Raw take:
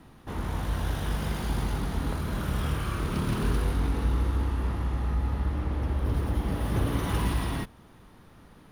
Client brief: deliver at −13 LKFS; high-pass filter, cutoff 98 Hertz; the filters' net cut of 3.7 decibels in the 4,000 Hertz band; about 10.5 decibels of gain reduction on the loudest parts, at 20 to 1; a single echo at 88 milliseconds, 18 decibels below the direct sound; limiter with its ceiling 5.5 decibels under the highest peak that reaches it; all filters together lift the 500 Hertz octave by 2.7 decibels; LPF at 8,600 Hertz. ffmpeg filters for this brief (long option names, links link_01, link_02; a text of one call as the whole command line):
ffmpeg -i in.wav -af "highpass=98,lowpass=8600,equalizer=frequency=500:width_type=o:gain=3.5,equalizer=frequency=4000:width_type=o:gain=-5,acompressor=threshold=-35dB:ratio=20,alimiter=level_in=7.5dB:limit=-24dB:level=0:latency=1,volume=-7.5dB,aecho=1:1:88:0.126,volume=28.5dB" out.wav